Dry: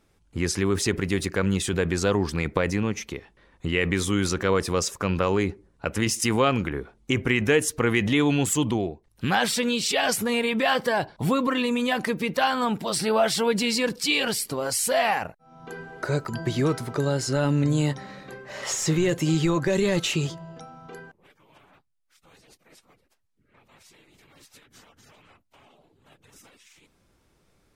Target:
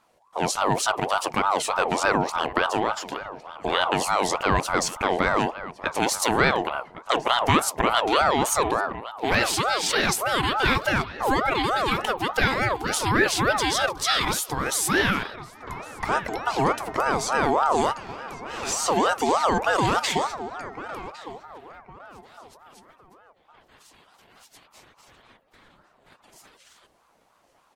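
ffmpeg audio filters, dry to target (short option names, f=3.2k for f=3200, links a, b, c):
-filter_complex "[0:a]asplit=2[a][b];[b]adelay=1109,lowpass=f=2k:p=1,volume=-14dB,asplit=2[c][d];[d]adelay=1109,lowpass=f=2k:p=1,volume=0.36,asplit=2[e][f];[f]adelay=1109,lowpass=f=2k:p=1,volume=0.36[g];[a][c][e][g]amix=inputs=4:normalize=0,aeval=exprs='val(0)*sin(2*PI*810*n/s+810*0.35/3.4*sin(2*PI*3.4*n/s))':c=same,volume=3.5dB"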